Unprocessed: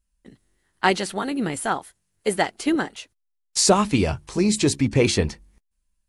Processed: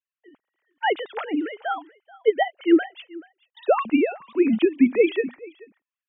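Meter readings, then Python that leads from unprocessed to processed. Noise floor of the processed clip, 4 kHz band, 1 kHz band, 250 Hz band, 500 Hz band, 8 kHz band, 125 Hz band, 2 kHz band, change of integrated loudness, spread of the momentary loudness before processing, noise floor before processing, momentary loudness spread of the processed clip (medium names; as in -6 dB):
under -85 dBFS, -10.5 dB, -2.0 dB, +1.5 dB, +2.0 dB, under -40 dB, under -20 dB, -2.5 dB, -0.5 dB, 10 LU, -75 dBFS, 13 LU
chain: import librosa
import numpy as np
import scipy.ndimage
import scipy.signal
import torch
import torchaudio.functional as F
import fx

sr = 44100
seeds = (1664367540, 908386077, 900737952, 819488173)

y = fx.sine_speech(x, sr)
y = y + 10.0 ** (-22.0 / 20.0) * np.pad(y, (int(432 * sr / 1000.0), 0))[:len(y)]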